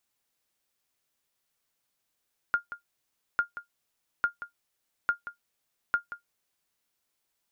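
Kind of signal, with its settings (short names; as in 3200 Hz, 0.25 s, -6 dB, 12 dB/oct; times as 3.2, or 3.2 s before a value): sonar ping 1410 Hz, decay 0.12 s, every 0.85 s, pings 5, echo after 0.18 s, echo -13.5 dB -15.5 dBFS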